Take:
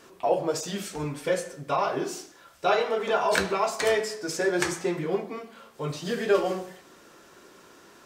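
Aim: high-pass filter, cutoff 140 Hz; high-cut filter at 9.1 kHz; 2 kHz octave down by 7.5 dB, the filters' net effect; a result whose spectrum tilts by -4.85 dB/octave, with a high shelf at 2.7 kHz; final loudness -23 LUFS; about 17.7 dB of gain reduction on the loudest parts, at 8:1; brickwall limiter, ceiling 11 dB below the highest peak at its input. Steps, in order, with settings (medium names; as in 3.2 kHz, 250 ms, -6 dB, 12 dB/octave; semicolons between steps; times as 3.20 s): high-pass 140 Hz; low-pass 9.1 kHz; peaking EQ 2 kHz -7 dB; treble shelf 2.7 kHz -7.5 dB; compression 8:1, threshold -37 dBFS; trim +24 dB; peak limiter -13.5 dBFS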